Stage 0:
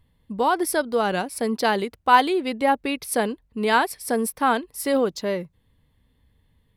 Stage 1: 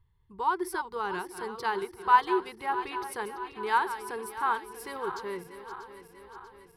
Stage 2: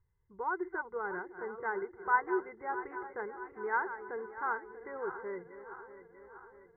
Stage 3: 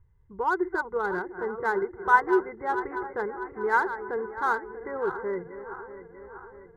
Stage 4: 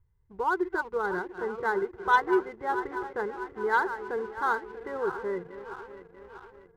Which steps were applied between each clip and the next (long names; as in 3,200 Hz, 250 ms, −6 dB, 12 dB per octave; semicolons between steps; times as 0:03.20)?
feedback delay that plays each chunk backwards 320 ms, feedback 74%, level −11.5 dB; drawn EQ curve 130 Hz 0 dB, 260 Hz −23 dB, 380 Hz 0 dB, 620 Hz −25 dB, 910 Hz +1 dB, 2,700 Hz −9 dB, 4,400 Hz −9 dB, 7,300 Hz −11 dB; level −4 dB
Chebyshev low-pass with heavy ripple 2,100 Hz, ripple 9 dB
adaptive Wiener filter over 9 samples; low-shelf EQ 180 Hz +7.5 dB; level +8.5 dB
leveller curve on the samples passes 1; level −5 dB